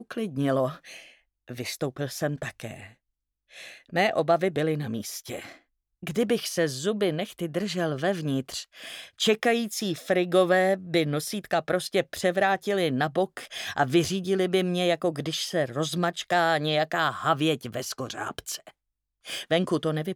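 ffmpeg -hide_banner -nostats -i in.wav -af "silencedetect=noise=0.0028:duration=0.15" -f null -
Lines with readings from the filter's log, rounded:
silence_start: 1.15
silence_end: 1.48 | silence_duration: 0.33
silence_start: 2.93
silence_end: 3.51 | silence_duration: 0.57
silence_start: 5.59
silence_end: 6.03 | silence_duration: 0.44
silence_start: 18.71
silence_end: 19.24 | silence_duration: 0.54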